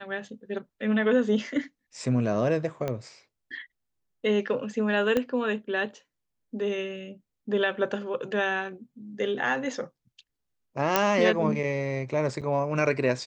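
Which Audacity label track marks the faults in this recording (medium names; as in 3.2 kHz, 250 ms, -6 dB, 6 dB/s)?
2.880000	2.880000	pop -17 dBFS
5.170000	5.170000	pop -13 dBFS
10.960000	10.960000	pop -5 dBFS
12.410000	12.420000	dropout 7.2 ms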